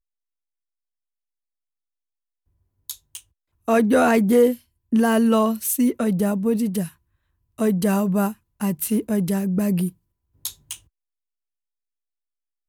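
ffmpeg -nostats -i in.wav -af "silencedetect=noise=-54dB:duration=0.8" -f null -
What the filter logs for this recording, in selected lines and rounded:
silence_start: 0.00
silence_end: 2.89 | silence_duration: 2.89
silence_start: 10.87
silence_end: 12.69 | silence_duration: 1.81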